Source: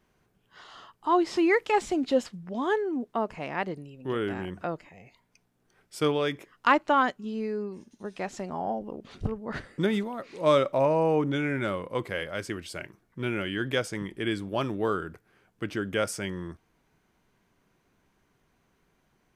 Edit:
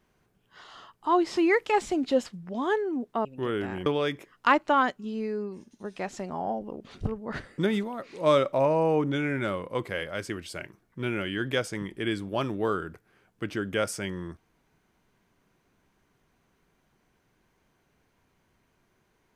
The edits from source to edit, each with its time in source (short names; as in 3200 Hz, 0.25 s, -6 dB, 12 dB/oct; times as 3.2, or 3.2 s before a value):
3.25–3.92 cut
4.53–6.06 cut